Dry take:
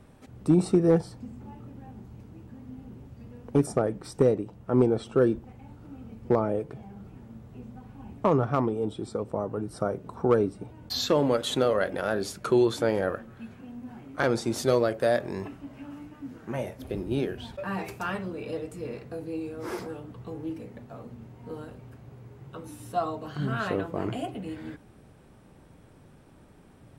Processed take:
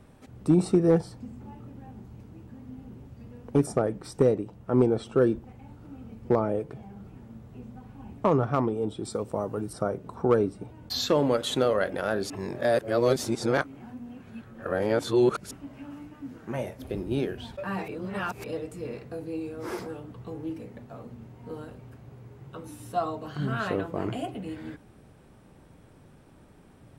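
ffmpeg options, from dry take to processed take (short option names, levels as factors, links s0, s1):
-filter_complex "[0:a]asettb=1/sr,asplit=3[s0][s1][s2];[s0]atrim=end=9.054[s3];[s1]atrim=start=9.05:end=9.73,asetpts=PTS-STARTPTS,afade=t=in:d=0.004:c=qsin,afade=t=out:st=0.676:d=0.004:c=qsin,highshelf=f=3600:g=11[s4];[s2]atrim=start=9.726[s5];[s3][s4]acrossfade=d=0.004:c1=hsin:c2=qsin[s6];[s6][s5]acrossfade=d=0.004:c1=qsin:c2=hsin,asplit=5[s7][s8][s9][s10][s11];[s7]atrim=end=12.302[s12];[s8]atrim=start=12.298:end=15.512,asetpts=PTS-STARTPTS,areverse[s13];[s9]atrim=start=15.508:end=17.882[s14];[s10]atrim=start=17.878:end=18.442,asetpts=PTS-STARTPTS,areverse[s15];[s11]atrim=start=18.438[s16];[s12][s13]acrossfade=d=0.004:c1=hsin:c2=hsin[s17];[s17][s14]acrossfade=d=0.004:c1=hsin:c2=hsin[s18];[s18][s15]acrossfade=d=0.004:c1=hsin:c2=hsin[s19];[s19][s16]acrossfade=d=0.004:c1=hsin:c2=hsin"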